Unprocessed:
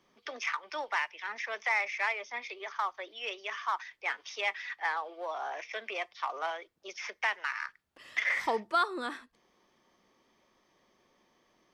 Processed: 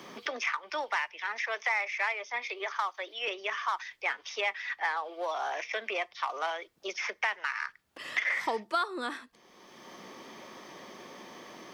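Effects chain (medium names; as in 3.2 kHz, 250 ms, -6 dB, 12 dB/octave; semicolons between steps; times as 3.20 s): 1.24–3.28 s: high-pass 360 Hz 12 dB/octave; three bands compressed up and down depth 70%; trim +1.5 dB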